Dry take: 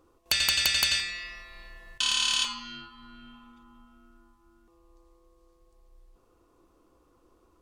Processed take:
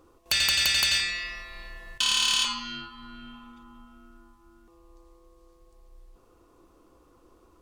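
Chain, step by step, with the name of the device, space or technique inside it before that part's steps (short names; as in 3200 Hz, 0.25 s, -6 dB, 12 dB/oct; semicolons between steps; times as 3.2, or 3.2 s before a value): limiter into clipper (limiter -18.5 dBFS, peak gain reduction 4 dB; hard clip -22 dBFS, distortion -20 dB); gain +5 dB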